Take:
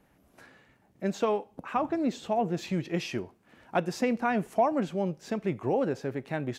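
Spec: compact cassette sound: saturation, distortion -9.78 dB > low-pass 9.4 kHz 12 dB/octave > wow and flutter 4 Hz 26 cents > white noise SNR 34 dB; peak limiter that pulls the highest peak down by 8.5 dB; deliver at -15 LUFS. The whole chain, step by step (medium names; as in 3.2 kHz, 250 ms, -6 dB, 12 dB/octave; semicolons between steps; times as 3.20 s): peak limiter -20.5 dBFS; saturation -30.5 dBFS; low-pass 9.4 kHz 12 dB/octave; wow and flutter 4 Hz 26 cents; white noise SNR 34 dB; trim +22 dB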